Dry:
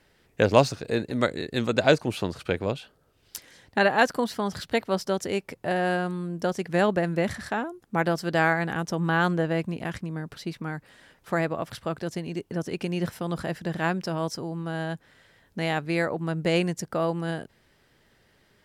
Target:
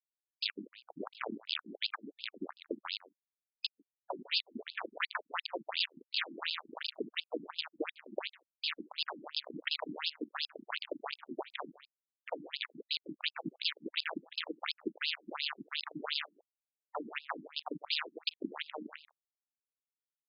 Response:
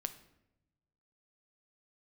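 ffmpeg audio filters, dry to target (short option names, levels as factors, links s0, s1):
-filter_complex "[0:a]highpass=f=78:p=1,aemphasis=mode=production:type=cd,bandreject=f=1000:w=7.1,asplit=2[s0][s1];[s1]asetrate=37084,aresample=44100,atempo=1.18921,volume=0.251[s2];[s0][s2]amix=inputs=2:normalize=0,acompressor=threshold=0.0158:ratio=16,aeval=exprs='val(0)*gte(abs(val(0)),0.02)':c=same,equalizer=f=9500:w=1:g=10,aexciter=amount=4.3:drive=8.2:freq=3700,aeval=exprs='0.316*sin(PI/2*4.47*val(0)/0.316)':c=same,asplit=2[s3][s4];[s4]adelay=140,highpass=300,lowpass=3400,asoftclip=type=hard:threshold=0.106,volume=0.141[s5];[s3][s5]amix=inputs=2:normalize=0,asetrate=40517,aresample=44100,afftfilt=real='re*between(b*sr/1024,240*pow(3700/240,0.5+0.5*sin(2*PI*2.8*pts/sr))/1.41,240*pow(3700/240,0.5+0.5*sin(2*PI*2.8*pts/sr))*1.41)':imag='im*between(b*sr/1024,240*pow(3700/240,0.5+0.5*sin(2*PI*2.8*pts/sr))/1.41,240*pow(3700/240,0.5+0.5*sin(2*PI*2.8*pts/sr))*1.41)':win_size=1024:overlap=0.75,volume=0.631"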